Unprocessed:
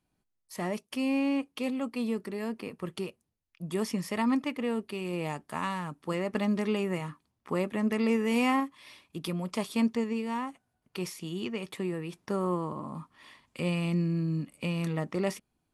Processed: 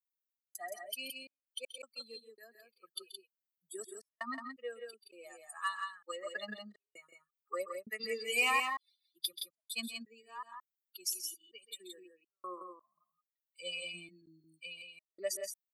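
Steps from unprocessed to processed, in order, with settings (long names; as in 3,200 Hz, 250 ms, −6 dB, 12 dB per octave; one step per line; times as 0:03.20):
spectral dynamics exaggerated over time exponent 3
tilt shelving filter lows −8.5 dB, about 910 Hz
in parallel at −4 dB: hard clipping −27 dBFS, distortion −15 dB
on the sum: Butterworth high-pass 230 Hz 48 dB per octave
high-shelf EQ 6,700 Hz +8 dB
comb filter 1.7 ms, depth 87%
gate pattern "xx.xxx..x.xx.xx" 82 BPM −60 dB
on a send: multi-tap delay 132/170 ms −13/−5.5 dB
on the sum: level −6.5 dB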